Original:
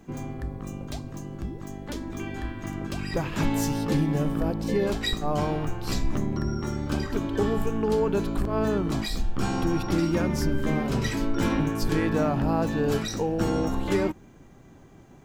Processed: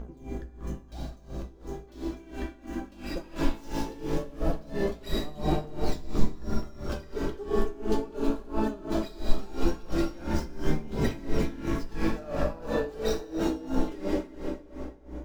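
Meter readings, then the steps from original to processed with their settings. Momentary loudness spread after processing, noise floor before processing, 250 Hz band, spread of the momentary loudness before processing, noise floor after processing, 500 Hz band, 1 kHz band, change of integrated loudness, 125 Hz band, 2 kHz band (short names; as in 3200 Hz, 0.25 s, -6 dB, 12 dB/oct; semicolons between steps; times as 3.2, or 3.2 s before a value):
10 LU, -50 dBFS, -5.5 dB, 11 LU, -50 dBFS, -4.0 dB, -5.5 dB, -5.5 dB, -7.5 dB, -6.5 dB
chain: median filter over 5 samples; buzz 60 Hz, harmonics 27, -38 dBFS -8 dB/oct; phaser 0.18 Hz, delay 3.8 ms, feedback 50%; bell 100 Hz -13.5 dB 0.36 oct; flange 0.92 Hz, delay 4.1 ms, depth 9.4 ms, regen +47%; graphic EQ 125/1000/2000 Hz -6/-3/-4 dB; plate-style reverb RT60 4.1 s, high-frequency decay 0.7×, DRR -0.5 dB; dB-linear tremolo 2.9 Hz, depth 20 dB; gain +2.5 dB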